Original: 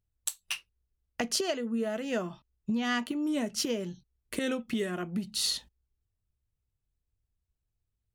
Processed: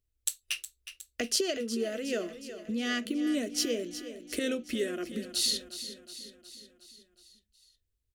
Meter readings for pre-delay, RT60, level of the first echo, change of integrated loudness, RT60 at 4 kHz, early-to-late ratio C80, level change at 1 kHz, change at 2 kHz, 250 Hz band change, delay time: no reverb, no reverb, -12.0 dB, 0.0 dB, no reverb, no reverb, -7.0 dB, -0.5 dB, -1.0 dB, 364 ms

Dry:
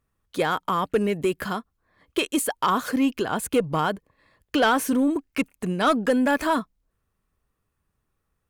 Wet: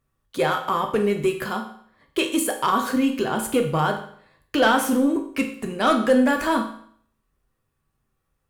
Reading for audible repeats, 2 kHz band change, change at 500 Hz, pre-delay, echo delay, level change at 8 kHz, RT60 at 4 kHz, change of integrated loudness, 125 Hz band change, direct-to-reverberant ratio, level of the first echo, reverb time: no echo, +2.0 dB, +2.5 dB, 8 ms, no echo, +1.5 dB, 0.60 s, +2.0 dB, +1.5 dB, 3.0 dB, no echo, 0.60 s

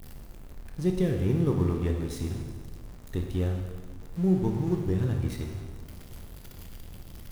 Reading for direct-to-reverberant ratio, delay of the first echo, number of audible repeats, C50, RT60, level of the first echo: 2.5 dB, no echo, no echo, 4.5 dB, 1.5 s, no echo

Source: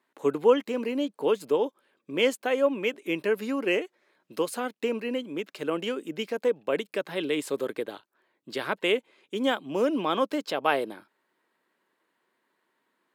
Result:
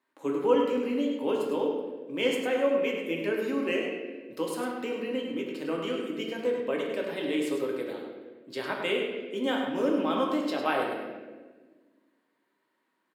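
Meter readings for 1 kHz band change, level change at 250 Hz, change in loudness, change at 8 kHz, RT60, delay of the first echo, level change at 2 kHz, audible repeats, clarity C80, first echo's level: -2.0 dB, +1.0 dB, -1.5 dB, -4.0 dB, 1.4 s, 102 ms, -2.0 dB, 1, 3.0 dB, -7.0 dB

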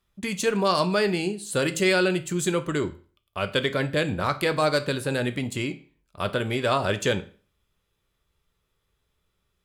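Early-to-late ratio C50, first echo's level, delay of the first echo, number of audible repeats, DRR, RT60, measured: 16.5 dB, no echo, no echo, no echo, 9.5 dB, 0.40 s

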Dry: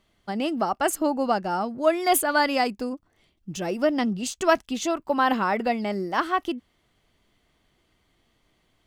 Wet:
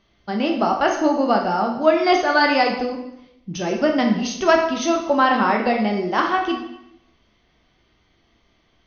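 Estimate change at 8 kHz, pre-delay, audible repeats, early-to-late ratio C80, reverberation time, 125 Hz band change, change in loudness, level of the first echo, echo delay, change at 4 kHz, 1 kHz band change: -3.0 dB, 6 ms, no echo, 8.5 dB, 0.80 s, +5.5 dB, +5.5 dB, no echo, no echo, +5.5 dB, +5.5 dB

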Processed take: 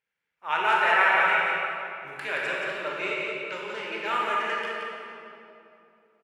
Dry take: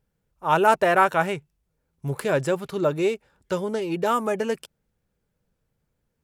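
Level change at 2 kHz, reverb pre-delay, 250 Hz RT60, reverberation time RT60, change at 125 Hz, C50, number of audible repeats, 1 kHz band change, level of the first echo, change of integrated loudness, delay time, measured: +5.5 dB, 20 ms, 3.6 s, 2.9 s, -20.0 dB, -3.5 dB, 1, -2.0 dB, -5.0 dB, -2.0 dB, 175 ms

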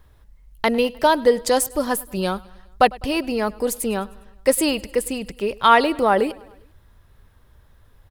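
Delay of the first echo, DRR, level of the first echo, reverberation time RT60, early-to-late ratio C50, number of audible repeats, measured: 102 ms, no reverb, -23.0 dB, no reverb, no reverb, 3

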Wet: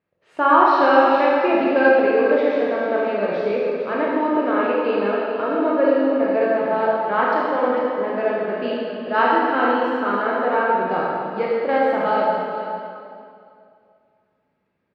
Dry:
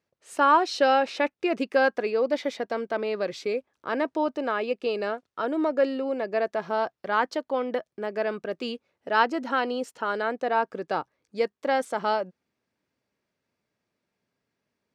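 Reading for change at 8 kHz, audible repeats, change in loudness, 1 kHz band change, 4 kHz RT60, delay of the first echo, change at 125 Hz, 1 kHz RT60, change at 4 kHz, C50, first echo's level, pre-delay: no reading, 1, +7.5 dB, +7.5 dB, 2.1 s, 448 ms, no reading, 2.4 s, +0.5 dB, -3.0 dB, -10.5 dB, 20 ms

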